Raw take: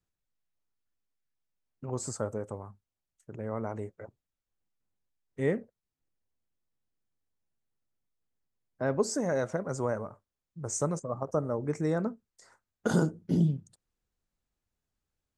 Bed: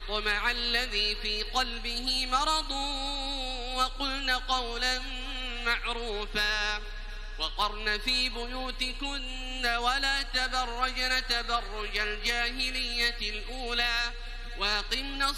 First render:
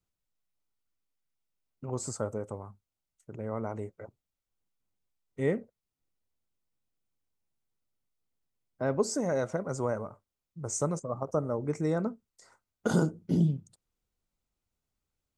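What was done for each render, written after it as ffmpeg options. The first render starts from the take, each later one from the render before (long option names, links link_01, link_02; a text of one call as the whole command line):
ffmpeg -i in.wav -af "bandreject=frequency=1700:width=8.5" out.wav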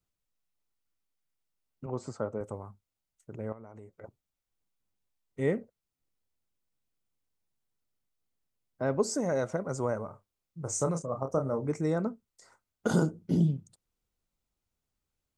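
ffmpeg -i in.wav -filter_complex "[0:a]asettb=1/sr,asplit=3[link_01][link_02][link_03];[link_01]atrim=end=1.864[link_04];[link_02]atrim=start=1.86:end=2.41,asetpts=PTS-STARTPTS,afade=type=in:duration=0.004:curve=qsin,afade=type=out:start_time=0.546:duration=0.004:curve=qsin,highpass=120,lowpass=3300[link_05];[link_03]atrim=start=2.406[link_06];[link_04][link_05]acrossfade=duration=0.004:curve1=hsin:curve2=qsin[link_07];[link_07][link_06]acrossfade=duration=0.004:curve1=qsin:curve2=hsin,asettb=1/sr,asplit=3[link_08][link_09][link_10];[link_08]atrim=end=3.524[link_11];[link_09]atrim=start=3.52:end=4.04,asetpts=PTS-STARTPTS,afade=type=in:duration=0.004:curve=qsin,afade=type=out:start_time=0.516:duration=0.004:curve=qsin,acompressor=threshold=-46dB:ratio=4:attack=3.2:release=140:knee=1:detection=peak[link_12];[link_10]atrim=start=4.036[link_13];[link_11][link_12]acrossfade=duration=0.004:curve1=hsin:curve2=qsin[link_14];[link_14][link_13]acrossfade=duration=0.004:curve1=qsin:curve2=hsin,asettb=1/sr,asplit=3[link_15][link_16][link_17];[link_15]atrim=end=10.054[link_18];[link_16]atrim=start=10.05:end=11.72,asetpts=PTS-STARTPTS,afade=type=in:duration=0.004:curve=qsin,afade=type=out:start_time=1.666:duration=0.004:curve=qsin,asplit=2[link_19][link_20];[link_20]adelay=30,volume=-6.5dB[link_21];[link_19][link_21]amix=inputs=2:normalize=0,atrim=end_sample=73647[link_22];[link_17]atrim=start=11.716[link_23];[link_18][link_22]acrossfade=duration=0.004:curve1=hsin:curve2=qsin[link_24];[link_24][link_23]acrossfade=duration=0.004:curve1=qsin:curve2=hsin" out.wav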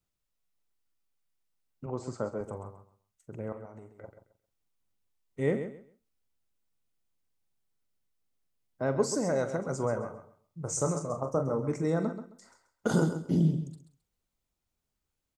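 ffmpeg -i in.wav -filter_complex "[0:a]asplit=2[link_01][link_02];[link_02]adelay=43,volume=-12dB[link_03];[link_01][link_03]amix=inputs=2:normalize=0,aecho=1:1:133|266|399:0.316|0.0664|0.0139" out.wav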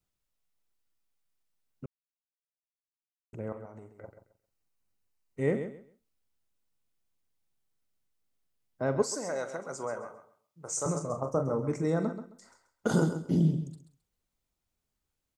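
ffmpeg -i in.wav -filter_complex "[0:a]asettb=1/sr,asplit=3[link_01][link_02][link_03];[link_01]atrim=end=3.914[link_04];[link_02]atrim=start=3.91:end=5.55,asetpts=PTS-STARTPTS,afade=type=in:duration=0.004:curve=qsin,afade=type=out:start_time=1.636:duration=0.004:curve=qsin,bandreject=frequency=3400:width=7.9[link_05];[link_03]atrim=start=5.546[link_06];[link_04][link_05]acrossfade=duration=0.004:curve1=hsin:curve2=qsin[link_07];[link_07][link_06]acrossfade=duration=0.004:curve1=qsin:curve2=hsin,asettb=1/sr,asplit=3[link_08][link_09][link_10];[link_08]atrim=end=9.024[link_11];[link_09]atrim=start=9.02:end=10.86,asetpts=PTS-STARTPTS,afade=type=in:duration=0.004:curve=qsin,afade=type=out:start_time=1.836:duration=0.004:curve=qsin,highpass=frequency=780:poles=1[link_12];[link_10]atrim=start=10.856[link_13];[link_11][link_12]acrossfade=duration=0.004:curve1=hsin:curve2=qsin[link_14];[link_14][link_13]acrossfade=duration=0.004:curve1=qsin:curve2=hsin,asplit=3[link_15][link_16][link_17];[link_15]atrim=end=1.86,asetpts=PTS-STARTPTS,afade=type=out:start_time=1.856:duration=0.004:curve=hsin[link_18];[link_16]atrim=start=1.86:end=3.33,asetpts=PTS-STARTPTS,volume=0[link_19];[link_17]atrim=start=3.33,asetpts=PTS-STARTPTS,afade=type=in:duration=0.004:curve=hsin[link_20];[link_18][link_19][link_20]concat=n=3:v=0:a=1" out.wav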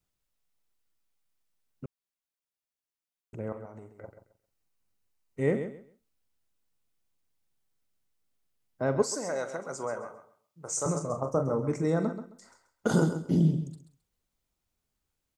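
ffmpeg -i in.wav -af "volume=1.5dB" out.wav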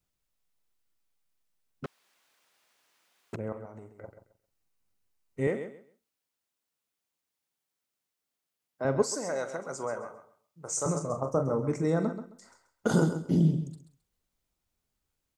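ffmpeg -i in.wav -filter_complex "[0:a]asettb=1/sr,asplit=3[link_01][link_02][link_03];[link_01]atrim=end=1.844[link_04];[link_02]atrim=start=1.84:end=3.36,asetpts=PTS-STARTPTS,afade=type=in:duration=0.004:curve=qsin,afade=type=out:start_time=1.516:duration=0.004:curve=qsin,asplit=2[link_05][link_06];[link_06]highpass=frequency=720:poles=1,volume=36dB,asoftclip=type=tanh:threshold=-27.5dB[link_07];[link_05][link_07]amix=inputs=2:normalize=0,lowpass=frequency=2400:poles=1,volume=-6dB[link_08];[link_03]atrim=start=3.356[link_09];[link_04][link_08]acrossfade=duration=0.004:curve1=hsin:curve2=qsin[link_10];[link_10][link_09]acrossfade=duration=0.004:curve1=qsin:curve2=hsin,asettb=1/sr,asplit=3[link_11][link_12][link_13];[link_11]atrim=end=5.474[link_14];[link_12]atrim=start=5.47:end=8.85,asetpts=PTS-STARTPTS,afade=type=in:duration=0.004:curve=qsin,afade=type=out:start_time=3.376:duration=0.004:curve=qsin,highpass=frequency=420:poles=1[link_15];[link_13]atrim=start=8.846[link_16];[link_14][link_15]acrossfade=duration=0.004:curve1=hsin:curve2=qsin[link_17];[link_17][link_16]acrossfade=duration=0.004:curve1=qsin:curve2=hsin" out.wav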